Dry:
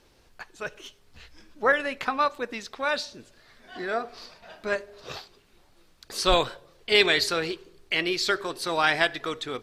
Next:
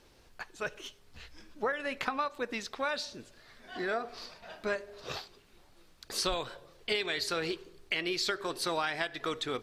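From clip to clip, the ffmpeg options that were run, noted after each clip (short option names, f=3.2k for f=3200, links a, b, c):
-af "acompressor=threshold=-27dB:ratio=16,volume=-1dB"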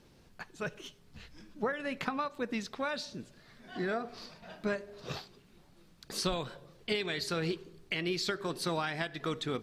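-af "equalizer=f=170:t=o:w=1.4:g=12.5,volume=-3dB"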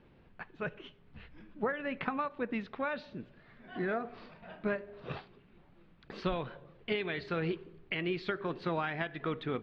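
-af "lowpass=f=2.9k:w=0.5412,lowpass=f=2.9k:w=1.3066"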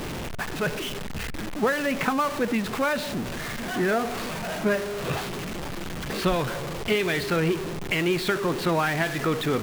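-af "aeval=exprs='val(0)+0.5*0.0188*sgn(val(0))':c=same,volume=7.5dB"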